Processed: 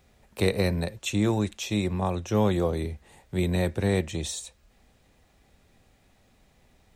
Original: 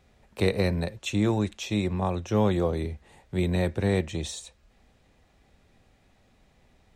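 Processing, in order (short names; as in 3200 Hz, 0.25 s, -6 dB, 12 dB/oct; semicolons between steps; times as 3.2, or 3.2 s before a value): high shelf 8600 Hz +10.5 dB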